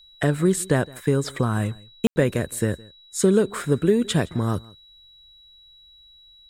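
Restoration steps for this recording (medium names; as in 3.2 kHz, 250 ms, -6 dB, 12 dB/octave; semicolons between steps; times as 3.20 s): band-stop 3.9 kHz, Q 30; room tone fill 2.07–2.16 s; inverse comb 164 ms -23.5 dB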